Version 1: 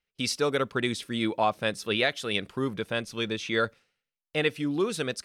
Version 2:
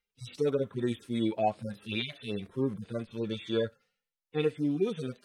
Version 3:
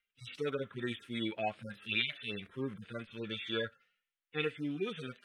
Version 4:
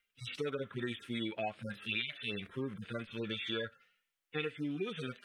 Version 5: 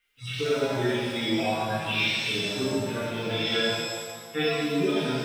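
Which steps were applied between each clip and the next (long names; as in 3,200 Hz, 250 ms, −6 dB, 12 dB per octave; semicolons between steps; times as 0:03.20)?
harmonic-percussive split with one part muted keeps harmonic
flat-topped bell 2,100 Hz +12.5 dB; level −8 dB
downward compressor 3 to 1, threshold −40 dBFS, peak gain reduction 10 dB; level +4.5 dB
one scale factor per block 7 bits; reverb with rising layers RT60 1.5 s, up +7 semitones, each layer −8 dB, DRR −10 dB; level +1.5 dB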